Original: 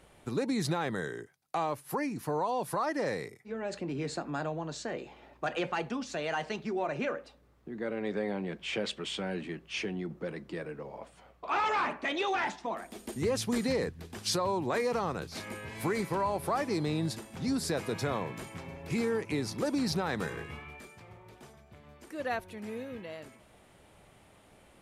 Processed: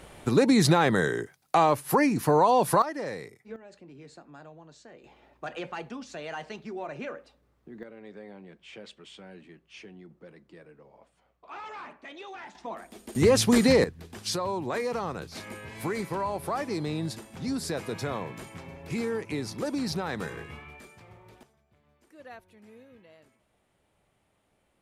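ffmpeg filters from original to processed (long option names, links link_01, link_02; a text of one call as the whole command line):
ffmpeg -i in.wav -af "asetnsamples=nb_out_samples=441:pad=0,asendcmd='2.82 volume volume -2dB;3.56 volume volume -13.5dB;5.04 volume volume -4dB;7.83 volume volume -12dB;12.55 volume volume -2dB;13.15 volume volume 10dB;13.84 volume volume 0dB;21.43 volume volume -12.5dB',volume=10.5dB" out.wav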